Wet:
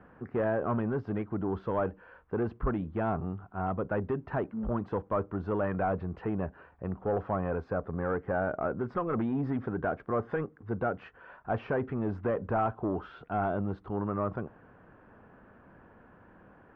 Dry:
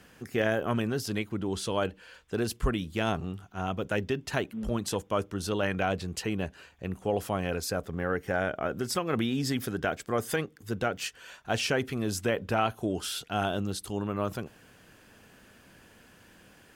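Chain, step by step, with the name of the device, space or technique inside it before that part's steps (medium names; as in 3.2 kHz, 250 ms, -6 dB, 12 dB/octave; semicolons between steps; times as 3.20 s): overdriven synthesiser ladder filter (saturation -25 dBFS, distortion -12 dB; four-pole ladder low-pass 1.5 kHz, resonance 30%); trim +8 dB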